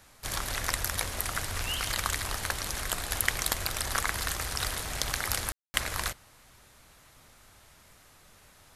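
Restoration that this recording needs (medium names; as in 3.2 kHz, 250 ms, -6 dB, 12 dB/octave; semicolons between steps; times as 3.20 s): clip repair -6 dBFS; room tone fill 5.52–5.74 s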